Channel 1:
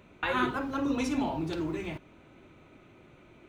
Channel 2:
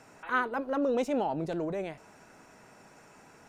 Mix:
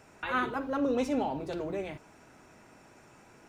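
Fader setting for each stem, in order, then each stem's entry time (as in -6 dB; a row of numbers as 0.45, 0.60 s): -6.5, -2.5 dB; 0.00, 0.00 s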